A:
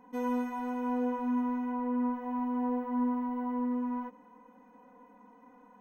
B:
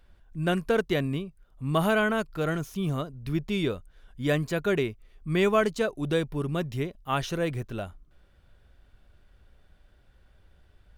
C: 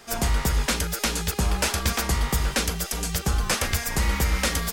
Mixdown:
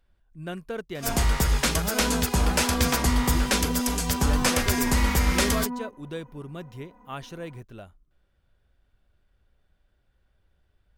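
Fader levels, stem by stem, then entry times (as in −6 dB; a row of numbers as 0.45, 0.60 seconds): +1.5, −9.0, +0.5 decibels; 1.80, 0.00, 0.95 seconds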